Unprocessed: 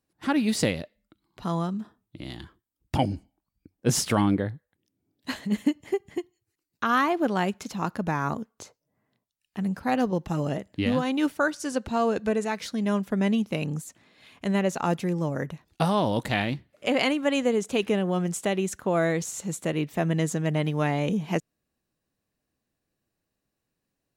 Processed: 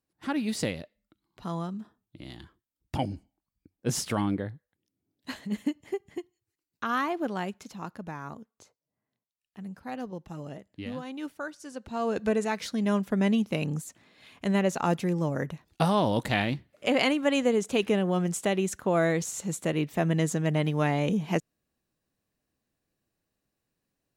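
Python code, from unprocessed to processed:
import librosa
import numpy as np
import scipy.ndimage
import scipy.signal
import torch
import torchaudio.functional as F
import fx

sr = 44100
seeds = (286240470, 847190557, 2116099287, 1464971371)

y = fx.gain(x, sr, db=fx.line((7.17, -5.5), (8.24, -12.0), (11.76, -12.0), (12.23, -0.5)))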